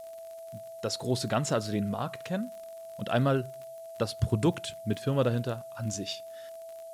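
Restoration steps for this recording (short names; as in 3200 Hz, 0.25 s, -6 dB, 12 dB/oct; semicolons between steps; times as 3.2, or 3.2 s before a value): de-click; notch 660 Hz, Q 30; noise print and reduce 30 dB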